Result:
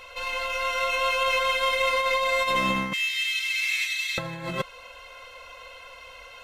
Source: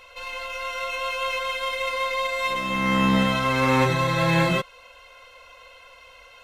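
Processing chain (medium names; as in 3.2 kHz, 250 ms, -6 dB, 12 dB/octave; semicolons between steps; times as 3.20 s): 2.93–4.18 s: elliptic high-pass 2.2 kHz, stop band 80 dB; compressor with a negative ratio -26 dBFS, ratio -0.5; trim +2 dB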